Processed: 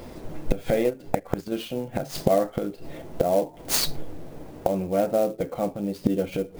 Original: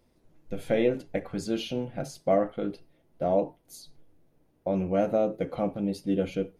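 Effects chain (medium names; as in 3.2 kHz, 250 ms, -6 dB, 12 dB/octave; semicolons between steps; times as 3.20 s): peaking EQ 690 Hz +4 dB 2.1 oct; 0.83–1.52 s: transient shaper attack -6 dB, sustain -10 dB; inverted gate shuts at -28 dBFS, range -26 dB; loudness maximiser +30 dB; sampling jitter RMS 0.022 ms; trim -5 dB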